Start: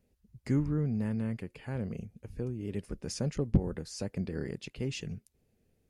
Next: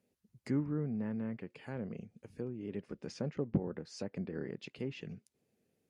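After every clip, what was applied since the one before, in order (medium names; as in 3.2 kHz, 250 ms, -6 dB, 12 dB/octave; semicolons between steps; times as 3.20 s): high-pass 170 Hz 12 dB/octave; low-pass that closes with the level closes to 2.1 kHz, closed at -33 dBFS; trim -2.5 dB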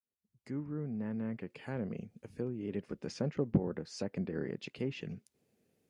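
fade-in on the opening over 1.58 s; trim +3 dB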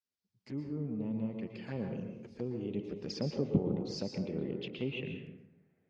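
touch-sensitive flanger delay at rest 11.3 ms, full sweep at -35.5 dBFS; low-pass sweep 5 kHz -> 1.9 kHz, 3.95–5.49 s; plate-style reverb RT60 0.94 s, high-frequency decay 0.55×, pre-delay 105 ms, DRR 4 dB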